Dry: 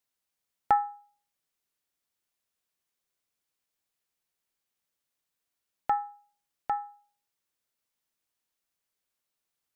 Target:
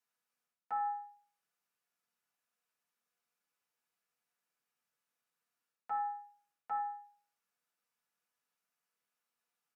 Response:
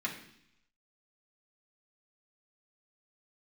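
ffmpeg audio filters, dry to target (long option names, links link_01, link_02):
-filter_complex "[0:a]highpass=210,areverse,acompressor=threshold=-34dB:ratio=16,areverse,asplit=2[link_01][link_02];[link_02]adelay=145.8,volume=-19dB,highshelf=frequency=4000:gain=-3.28[link_03];[link_01][link_03]amix=inputs=2:normalize=0[link_04];[1:a]atrim=start_sample=2205,atrim=end_sample=3087,asetrate=29988,aresample=44100[link_05];[link_04][link_05]afir=irnorm=-1:irlink=0,volume=-6dB"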